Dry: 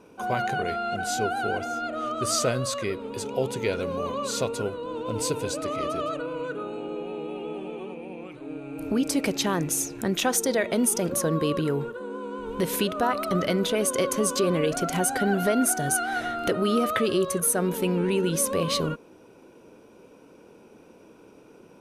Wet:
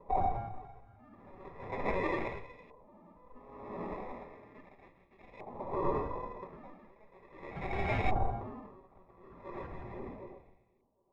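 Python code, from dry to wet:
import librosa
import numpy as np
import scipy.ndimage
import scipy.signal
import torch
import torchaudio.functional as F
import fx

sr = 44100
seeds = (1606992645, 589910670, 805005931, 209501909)

p1 = fx.tilt_eq(x, sr, slope=3.5)
p2 = fx.over_compress(p1, sr, threshold_db=-27.0, ratio=-0.5)
p3 = p1 + F.gain(torch.from_numpy(p2), 2.0).numpy()
p4 = 10.0 ** (-8.0 / 20.0) * (np.abs((p3 / 10.0 ** (-8.0 / 20.0) + 3.0) % 4.0 - 2.0) - 1.0)
p5 = fx.stretch_vocoder(p4, sr, factor=0.51)
p6 = fx.bandpass_q(p5, sr, hz=1500.0, q=0.53)
p7 = fx.sample_hold(p6, sr, seeds[0], rate_hz=1500.0, jitter_pct=0)
p8 = fx.echo_split(p7, sr, split_hz=990.0, low_ms=759, high_ms=165, feedback_pct=52, wet_db=-13.0)
p9 = fx.room_shoebox(p8, sr, seeds[1], volume_m3=460.0, walls='furnished', distance_m=1.2)
p10 = fx.filter_lfo_lowpass(p9, sr, shape='saw_up', hz=0.37, low_hz=910.0, high_hz=2400.0, q=2.0)
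p11 = p10 * 10.0 ** (-29 * (0.5 - 0.5 * np.cos(2.0 * np.pi * 0.5 * np.arange(len(p10)) / sr)) / 20.0)
y = F.gain(torch.from_numpy(p11), -9.0).numpy()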